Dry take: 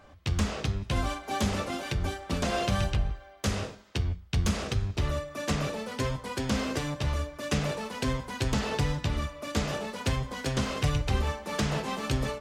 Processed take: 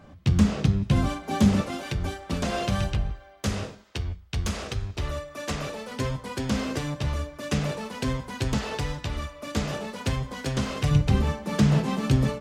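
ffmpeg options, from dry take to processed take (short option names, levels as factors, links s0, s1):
-af "asetnsamples=n=441:p=0,asendcmd='1.61 equalizer g 3;3.84 equalizer g -4;5.91 equalizer g 3.5;8.58 equalizer g -4;9.43 equalizer g 3;10.91 equalizer g 12.5',equalizer=f=170:t=o:w=1.7:g=13.5"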